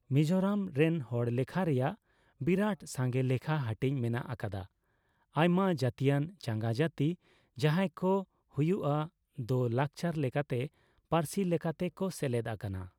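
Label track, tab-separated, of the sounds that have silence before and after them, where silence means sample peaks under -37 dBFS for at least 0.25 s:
2.410000	4.620000	sound
5.360000	7.140000	sound
7.580000	8.220000	sound
8.580000	9.060000	sound
9.390000	10.660000	sound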